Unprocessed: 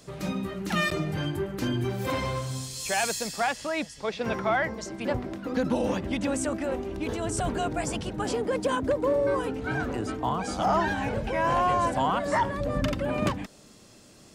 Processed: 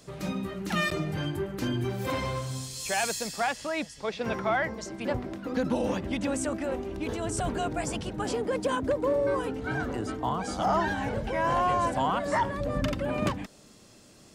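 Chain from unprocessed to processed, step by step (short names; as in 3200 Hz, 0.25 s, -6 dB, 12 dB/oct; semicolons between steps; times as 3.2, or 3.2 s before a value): 9.51–11.63 notch 2500 Hz, Q 12; gain -1.5 dB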